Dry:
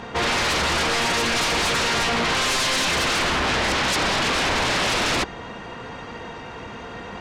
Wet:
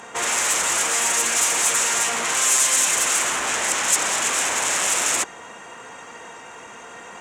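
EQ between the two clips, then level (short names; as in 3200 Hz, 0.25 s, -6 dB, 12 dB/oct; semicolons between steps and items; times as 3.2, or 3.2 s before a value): HPF 820 Hz 6 dB/oct; resonant high shelf 5800 Hz +9 dB, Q 3; 0.0 dB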